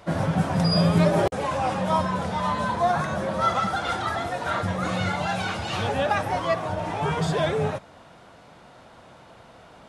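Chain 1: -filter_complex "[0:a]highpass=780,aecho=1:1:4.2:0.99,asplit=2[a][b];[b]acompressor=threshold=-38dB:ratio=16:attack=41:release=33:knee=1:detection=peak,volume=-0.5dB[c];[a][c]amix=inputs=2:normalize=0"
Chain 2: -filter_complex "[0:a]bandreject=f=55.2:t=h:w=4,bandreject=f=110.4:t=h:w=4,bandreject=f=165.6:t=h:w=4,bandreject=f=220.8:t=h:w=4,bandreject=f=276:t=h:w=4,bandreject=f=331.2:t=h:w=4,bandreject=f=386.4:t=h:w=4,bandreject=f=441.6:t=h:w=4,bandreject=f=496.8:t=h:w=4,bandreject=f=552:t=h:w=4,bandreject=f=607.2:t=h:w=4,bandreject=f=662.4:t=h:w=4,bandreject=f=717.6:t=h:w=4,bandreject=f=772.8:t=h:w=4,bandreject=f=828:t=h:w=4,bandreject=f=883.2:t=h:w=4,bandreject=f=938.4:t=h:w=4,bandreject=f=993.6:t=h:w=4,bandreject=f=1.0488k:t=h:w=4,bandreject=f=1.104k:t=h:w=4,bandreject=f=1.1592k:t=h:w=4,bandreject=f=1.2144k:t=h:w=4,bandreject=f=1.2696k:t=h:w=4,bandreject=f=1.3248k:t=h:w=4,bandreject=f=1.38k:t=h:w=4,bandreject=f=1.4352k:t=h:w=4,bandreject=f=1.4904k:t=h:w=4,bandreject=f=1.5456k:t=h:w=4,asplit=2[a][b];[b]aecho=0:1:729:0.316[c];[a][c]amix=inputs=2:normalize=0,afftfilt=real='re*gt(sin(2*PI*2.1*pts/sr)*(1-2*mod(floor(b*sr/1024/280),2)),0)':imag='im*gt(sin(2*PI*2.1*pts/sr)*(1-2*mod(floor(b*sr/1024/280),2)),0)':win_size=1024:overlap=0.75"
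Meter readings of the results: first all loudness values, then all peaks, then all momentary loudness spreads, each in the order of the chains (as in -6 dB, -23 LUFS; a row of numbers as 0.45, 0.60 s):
-23.5, -28.5 LUFS; -9.5, -9.5 dBFS; 21, 8 LU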